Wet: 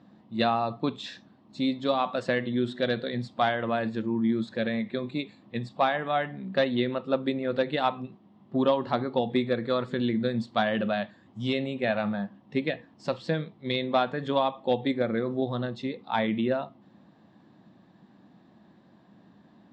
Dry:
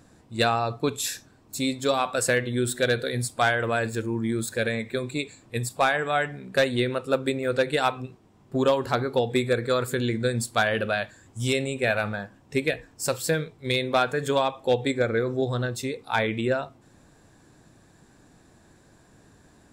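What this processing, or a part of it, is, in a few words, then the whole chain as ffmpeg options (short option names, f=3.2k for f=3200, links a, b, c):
kitchen radio: -af "highpass=170,equalizer=f=200:t=q:w=4:g=10,equalizer=f=440:t=q:w=4:g=-8,equalizer=f=1.5k:t=q:w=4:g=-9,equalizer=f=2.4k:t=q:w=4:g=-8,lowpass=f=3.6k:w=0.5412,lowpass=f=3.6k:w=1.3066"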